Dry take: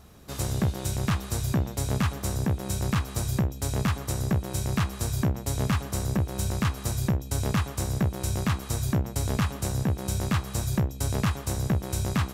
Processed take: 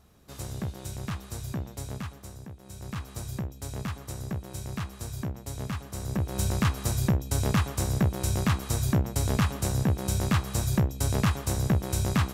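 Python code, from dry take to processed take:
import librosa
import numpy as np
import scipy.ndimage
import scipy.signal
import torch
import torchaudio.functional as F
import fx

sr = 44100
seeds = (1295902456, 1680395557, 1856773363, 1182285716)

y = fx.gain(x, sr, db=fx.line((1.8, -8.0), (2.56, -18.0), (3.04, -8.0), (5.91, -8.0), (6.39, 1.0)))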